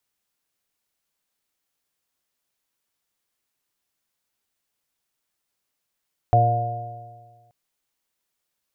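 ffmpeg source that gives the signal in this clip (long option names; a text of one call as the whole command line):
ffmpeg -f lavfi -i "aevalsrc='0.168*pow(10,-3*t/1.58)*sin(2*PI*115.11*t)+0.0168*pow(10,-3*t/1.58)*sin(2*PI*230.87*t)+0.0237*pow(10,-3*t/1.58)*sin(2*PI*347.94*t)+0.0376*pow(10,-3*t/1.58)*sin(2*PI*466.94*t)+0.0596*pow(10,-3*t/1.58)*sin(2*PI*588.5*t)+0.211*pow(10,-3*t/1.58)*sin(2*PI*713.21*t)':duration=1.18:sample_rate=44100" out.wav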